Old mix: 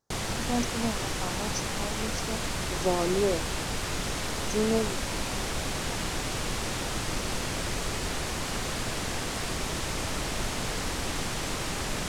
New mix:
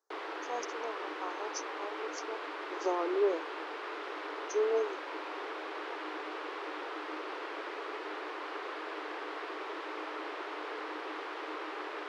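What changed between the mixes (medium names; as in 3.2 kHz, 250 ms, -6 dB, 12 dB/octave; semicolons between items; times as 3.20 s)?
background: add distance through air 350 m; master: add rippled Chebyshev high-pass 300 Hz, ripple 6 dB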